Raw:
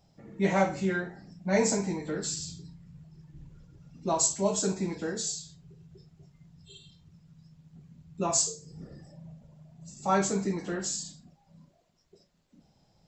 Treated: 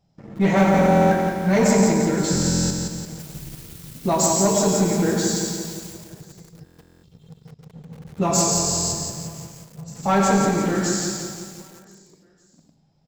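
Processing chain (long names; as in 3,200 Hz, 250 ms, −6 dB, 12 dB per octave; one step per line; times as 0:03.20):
parametric band 160 Hz +4.5 dB 1.2 octaves
convolution reverb RT60 0.60 s, pre-delay 88 ms, DRR 3 dB
0:03.18–0:05.92: background noise blue −47 dBFS
high-shelf EQ 7,000 Hz −5 dB
leveller curve on the samples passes 2
repeating echo 513 ms, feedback 43%, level −19 dB
buffer that repeats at 0:00.72/0:02.31/0:06.64/0:08.53, samples 1,024, times 16
feedback echo at a low word length 173 ms, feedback 55%, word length 7 bits, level −4.5 dB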